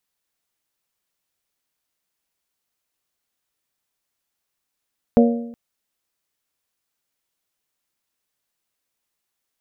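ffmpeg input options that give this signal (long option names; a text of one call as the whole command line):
ffmpeg -f lavfi -i "aevalsrc='0.355*pow(10,-3*t/0.8)*sin(2*PI*235*t)+0.224*pow(10,-3*t/0.65)*sin(2*PI*470*t)+0.141*pow(10,-3*t/0.615)*sin(2*PI*564*t)+0.0891*pow(10,-3*t/0.575)*sin(2*PI*705*t)':duration=0.37:sample_rate=44100" out.wav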